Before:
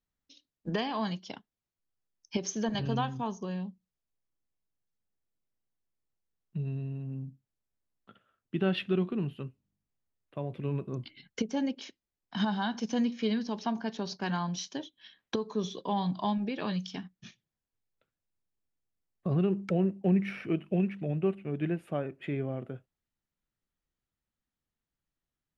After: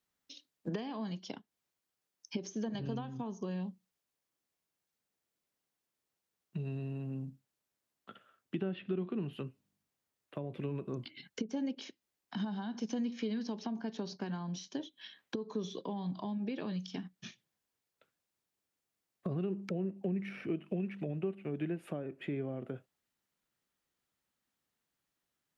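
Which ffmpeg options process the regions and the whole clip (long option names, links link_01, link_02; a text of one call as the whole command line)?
ffmpeg -i in.wav -filter_complex "[0:a]asettb=1/sr,asplit=3[link_01][link_02][link_03];[link_01]atrim=end=8.614[link_04];[link_02]atrim=start=8.61:end=9.33,asetpts=PTS-STARTPTS,afade=type=in:duration=0.004:curve=qsin,afade=type=out:start_time=0.716:duration=0.004:curve=qsin,acrossover=split=3200[link_05][link_06];[link_06]acompressor=threshold=-57dB:ratio=4:attack=1:release=60[link_07];[link_05][link_07]amix=inputs=2:normalize=0,highshelf=frequency=5600:gain=-6[link_08];[link_03]atrim=start=9.326[link_09];[link_04][link_08]acrossfade=duration=0.004:curve1=hsin:curve2=qsin[link_10];[link_10][link_09]acrossfade=duration=0.004:curve1=qsin:curve2=hsin,acompressor=threshold=-36dB:ratio=3,highpass=frequency=310:poles=1,acrossover=split=430[link_11][link_12];[link_12]acompressor=threshold=-53dB:ratio=6[link_13];[link_11][link_13]amix=inputs=2:normalize=0,volume=6.5dB" out.wav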